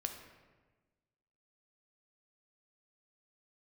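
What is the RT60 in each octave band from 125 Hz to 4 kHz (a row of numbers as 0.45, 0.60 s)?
1.6, 1.5, 1.4, 1.2, 1.1, 0.85 s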